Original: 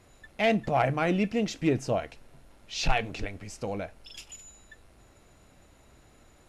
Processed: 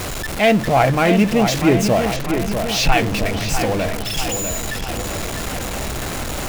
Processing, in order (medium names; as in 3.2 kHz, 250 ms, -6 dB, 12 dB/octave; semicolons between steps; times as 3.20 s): jump at every zero crossing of -29 dBFS; filtered feedback delay 648 ms, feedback 62%, low-pass 4 kHz, level -7 dB; attacks held to a fixed rise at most 250 dB/s; trim +8.5 dB